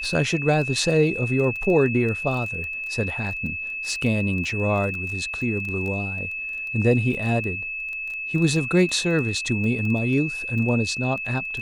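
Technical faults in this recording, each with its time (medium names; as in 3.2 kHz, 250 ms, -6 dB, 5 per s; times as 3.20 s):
crackle 18 per s -29 dBFS
whine 2.6 kHz -28 dBFS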